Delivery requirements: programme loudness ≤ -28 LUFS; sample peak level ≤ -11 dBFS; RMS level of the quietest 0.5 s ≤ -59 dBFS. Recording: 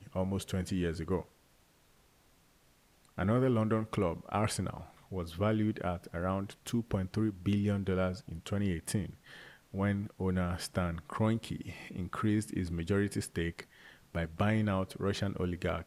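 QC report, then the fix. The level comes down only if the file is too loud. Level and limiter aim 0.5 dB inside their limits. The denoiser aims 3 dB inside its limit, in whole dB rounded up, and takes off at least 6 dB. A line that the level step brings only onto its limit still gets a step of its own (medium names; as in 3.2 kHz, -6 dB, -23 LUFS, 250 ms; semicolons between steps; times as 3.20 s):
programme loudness -34.0 LUFS: pass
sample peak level -17.0 dBFS: pass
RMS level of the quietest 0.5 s -66 dBFS: pass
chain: none needed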